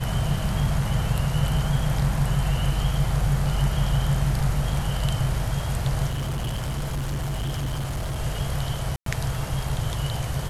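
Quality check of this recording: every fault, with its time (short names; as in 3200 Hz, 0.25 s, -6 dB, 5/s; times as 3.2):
6.1–8.2 clipped -24 dBFS
8.96–9.06 gap 0.103 s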